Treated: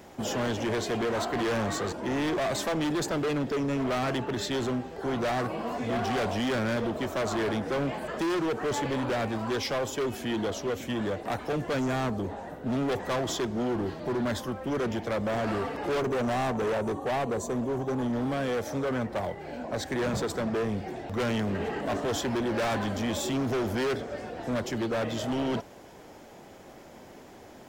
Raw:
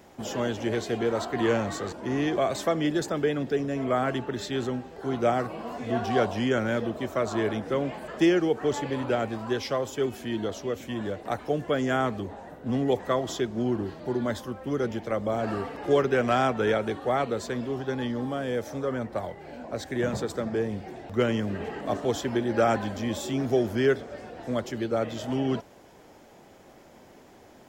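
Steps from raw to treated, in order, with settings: 11.79–12.24 s: peaking EQ 2.4 kHz -11 dB 1.3 oct; 15.98–18.13 s: time-frequency box 1.2–5.7 kHz -13 dB; hard clipper -29.5 dBFS, distortion -5 dB; trim +3.5 dB

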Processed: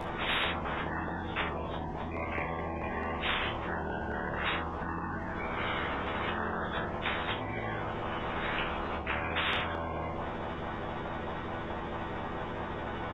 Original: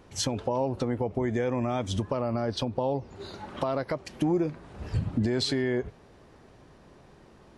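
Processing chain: rotating-head pitch shifter -10 st; peaking EQ 1.5 kHz +9 dB 0.66 oct; comb 7 ms, depth 86%; peak limiter -23 dBFS, peak gain reduction 9.5 dB; LFO notch saw up 8 Hz 430–1700 Hz; early reflections 16 ms -6.5 dB, 41 ms -13 dB; reverberation RT60 0.35 s, pre-delay 3 ms, DRR 5 dB; speed mistake 78 rpm record played at 45 rpm; spectrum-flattening compressor 10:1; trim -2 dB

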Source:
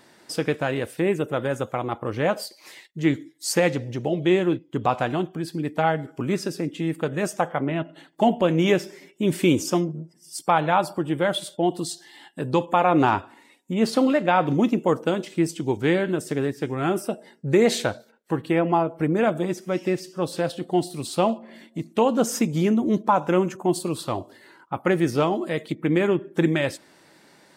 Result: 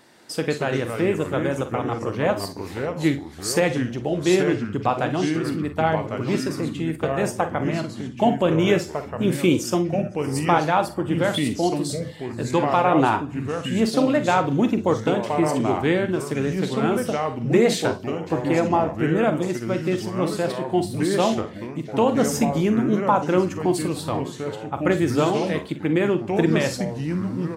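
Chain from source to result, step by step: multi-tap echo 44/58 ms -11.5/-16.5 dB; ever faster or slower copies 153 ms, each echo -3 st, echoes 3, each echo -6 dB

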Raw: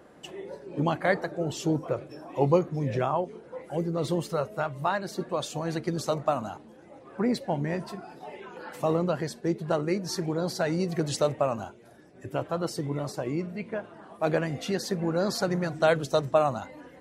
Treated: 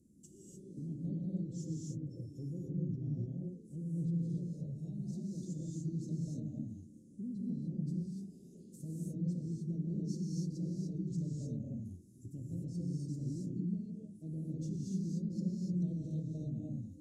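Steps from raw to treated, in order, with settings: low-pass that closes with the level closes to 2.1 kHz, closed at -24.5 dBFS; elliptic band-stop 250–6800 Hz, stop band 70 dB; peak limiter -31 dBFS, peak gain reduction 10.5 dB; gated-style reverb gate 320 ms rising, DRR -4 dB; trim -5.5 dB

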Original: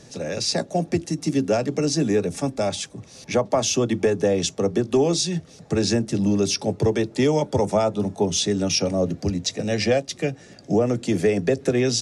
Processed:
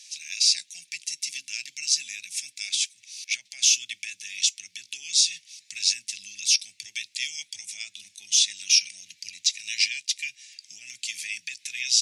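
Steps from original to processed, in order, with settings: peak limiter -13.5 dBFS, peak gain reduction 4.5 dB; elliptic high-pass 2.3 kHz, stop band 50 dB; trim +6 dB

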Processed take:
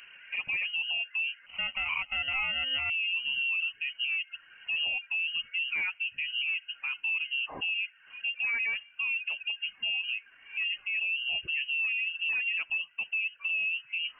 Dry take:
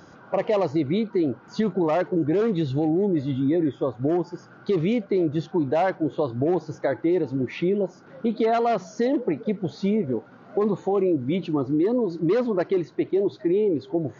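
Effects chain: reverb removal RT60 0.61 s; harmonic-percussive split percussive -6 dB; compression, threshold -25 dBFS, peak gain reduction 6.5 dB; peak limiter -25 dBFS, peak gain reduction 7 dB; 1.46–2.90 s: sample-rate reducer 1.3 kHz, jitter 0%; frequency inversion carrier 3 kHz

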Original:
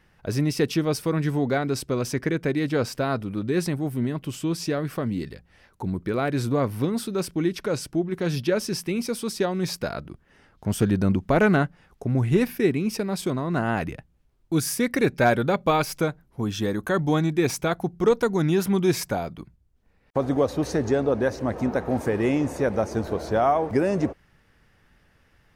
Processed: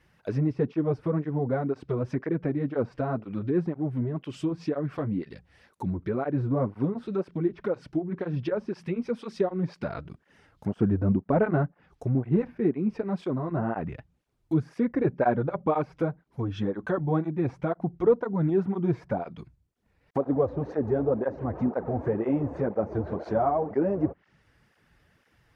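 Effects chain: low-pass that closes with the level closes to 1 kHz, closed at -21.5 dBFS; cancelling through-zero flanger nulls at 2 Hz, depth 5.6 ms

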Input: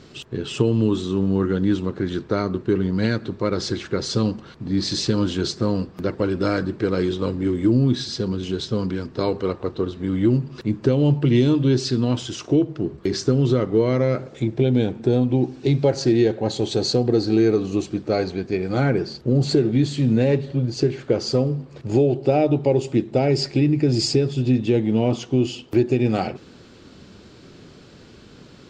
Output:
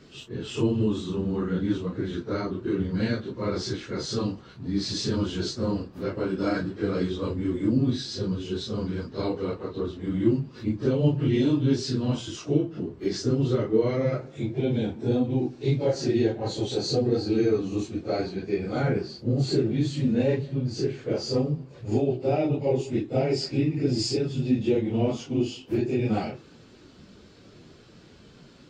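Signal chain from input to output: phase randomisation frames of 100 ms; trim -5.5 dB

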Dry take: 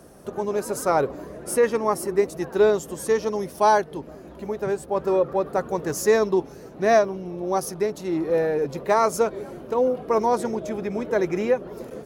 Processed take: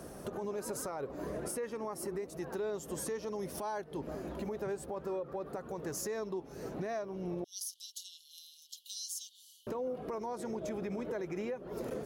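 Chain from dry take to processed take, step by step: 7.44–9.67 s: Chebyshev high-pass 2.9 kHz, order 10; compression 16:1, threshold -32 dBFS, peak gain reduction 19.5 dB; peak limiter -31 dBFS, peak gain reduction 10.5 dB; trim +1 dB

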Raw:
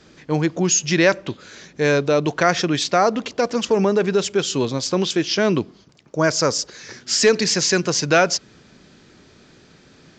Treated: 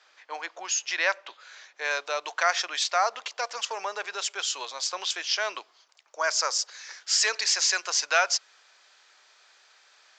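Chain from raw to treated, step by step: treble shelf 7.1 kHz -12 dB, from 1.91 s +2 dB; high-pass 750 Hz 24 dB/octave; trim -4 dB

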